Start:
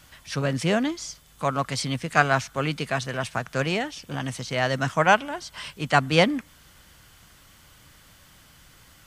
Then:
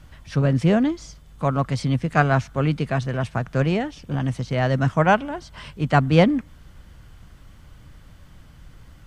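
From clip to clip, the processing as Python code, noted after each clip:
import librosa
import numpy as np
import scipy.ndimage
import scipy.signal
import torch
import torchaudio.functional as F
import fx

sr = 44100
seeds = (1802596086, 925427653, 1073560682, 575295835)

y = fx.tilt_eq(x, sr, slope=-3.0)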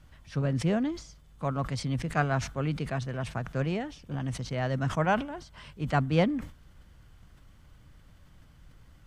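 y = fx.sustainer(x, sr, db_per_s=130.0)
y = F.gain(torch.from_numpy(y), -9.0).numpy()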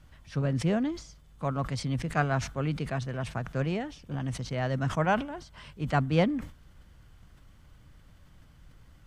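y = x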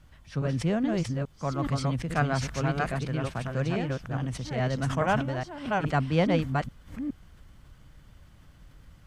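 y = fx.reverse_delay(x, sr, ms=418, wet_db=-2)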